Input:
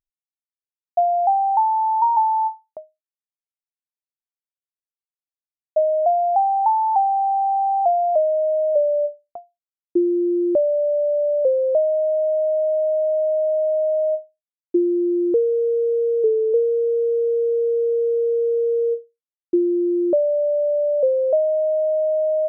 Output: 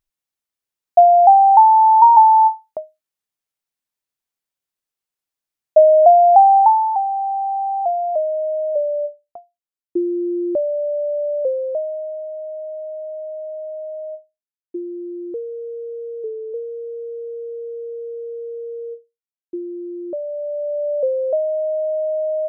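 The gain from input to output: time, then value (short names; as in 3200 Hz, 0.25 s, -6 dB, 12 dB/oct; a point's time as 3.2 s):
6.57 s +8.5 dB
6.98 s -2 dB
11.44 s -2 dB
12.29 s -10 dB
20.04 s -10 dB
20.92 s -1.5 dB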